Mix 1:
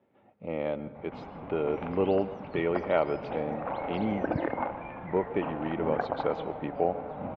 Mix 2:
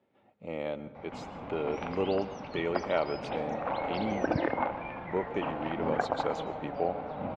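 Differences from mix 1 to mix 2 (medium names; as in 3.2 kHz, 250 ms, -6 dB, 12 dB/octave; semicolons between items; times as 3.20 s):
speech -4.5 dB; master: remove distance through air 320 m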